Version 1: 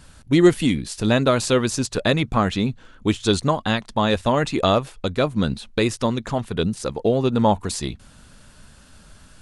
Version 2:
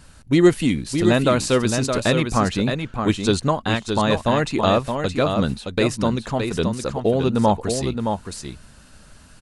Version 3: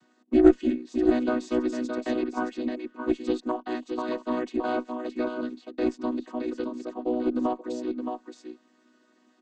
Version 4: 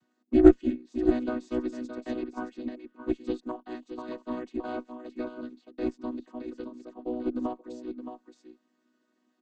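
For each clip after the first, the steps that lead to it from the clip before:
band-stop 3.4 kHz, Q 17; on a send: delay 619 ms -6 dB
vocoder on a held chord major triad, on B3; Chebyshev shaper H 4 -21 dB, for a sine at 2 dBFS; trim -6 dB
bass shelf 160 Hz +9.5 dB; upward expansion 1.5:1, over -32 dBFS

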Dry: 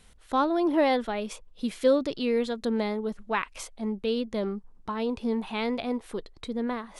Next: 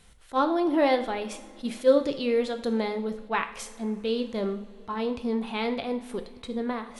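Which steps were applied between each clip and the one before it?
two-slope reverb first 0.57 s, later 4.8 s, from -21 dB, DRR 6.5 dB; attacks held to a fixed rise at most 450 dB/s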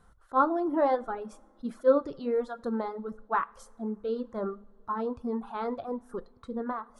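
reverb removal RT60 1.6 s; resonant high shelf 1.8 kHz -10.5 dB, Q 3; trim -3 dB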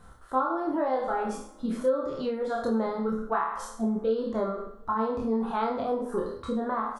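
spectral sustain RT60 0.57 s; compression 16:1, threshold -32 dBFS, peak gain reduction 17.5 dB; doubling 27 ms -3 dB; trim +6.5 dB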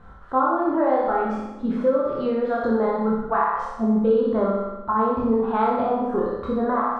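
low-pass 2.4 kHz 12 dB/octave; on a send: flutter echo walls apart 10.4 m, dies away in 0.89 s; on the sum: trim +5 dB

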